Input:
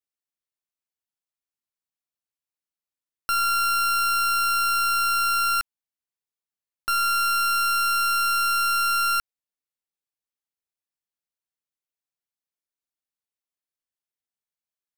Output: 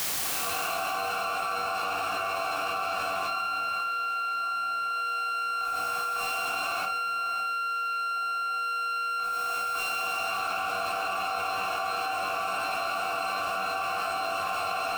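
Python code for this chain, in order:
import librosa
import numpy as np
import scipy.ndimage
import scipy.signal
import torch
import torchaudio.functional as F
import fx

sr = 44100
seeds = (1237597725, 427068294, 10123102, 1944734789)

p1 = fx.bin_compress(x, sr, power=0.4)
p2 = fx.recorder_agc(p1, sr, target_db=-24.0, rise_db_per_s=16.0, max_gain_db=30)
p3 = fx.leveller(p2, sr, passes=5)
p4 = fx.vowel_filter(p3, sr, vowel='a')
p5 = fx.low_shelf(p4, sr, hz=290.0, db=10.0)
p6 = fx.comb_fb(p5, sr, f0_hz=96.0, decay_s=0.43, harmonics='all', damping=0.0, mix_pct=90)
p7 = fx.room_shoebox(p6, sr, seeds[0], volume_m3=2700.0, walls='furnished', distance_m=3.5)
p8 = fx.quant_dither(p7, sr, seeds[1], bits=8, dither='triangular')
p9 = p7 + (p8 * 10.0 ** (-11.0 / 20.0))
p10 = fx.low_shelf(p9, sr, hz=120.0, db=-6.0)
p11 = fx.notch(p10, sr, hz=390.0, q=12.0)
p12 = p11 + fx.echo_alternate(p11, sr, ms=552, hz=2400.0, feedback_pct=77, wet_db=-3.5, dry=0)
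p13 = fx.env_flatten(p12, sr, amount_pct=100)
y = p13 * 10.0 ** (-2.5 / 20.0)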